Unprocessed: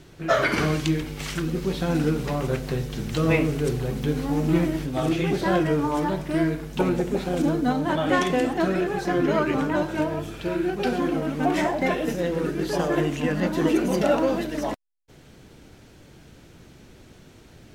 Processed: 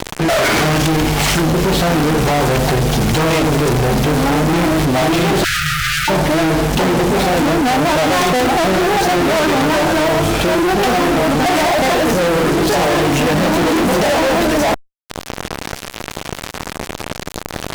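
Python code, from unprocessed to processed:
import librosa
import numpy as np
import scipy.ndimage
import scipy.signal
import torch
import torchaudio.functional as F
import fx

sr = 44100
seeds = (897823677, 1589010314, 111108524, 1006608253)

y = fx.peak_eq(x, sr, hz=750.0, db=9.0, octaves=0.79)
y = fx.fuzz(y, sr, gain_db=39.0, gate_db=-42.0)
y = fx.brickwall_bandstop(y, sr, low_hz=150.0, high_hz=1200.0, at=(5.44, 6.08))
y = fx.env_flatten(y, sr, amount_pct=50)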